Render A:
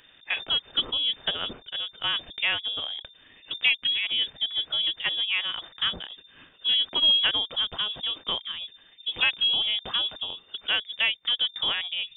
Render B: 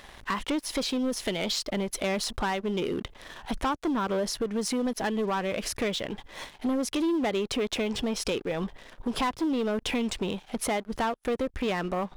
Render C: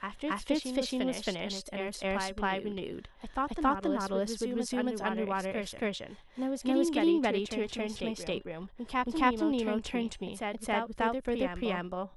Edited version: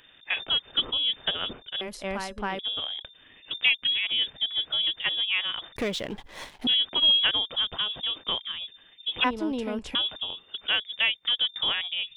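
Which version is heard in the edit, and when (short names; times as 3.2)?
A
1.81–2.59 from C
5.76–6.67 from B
9.24–9.95 from C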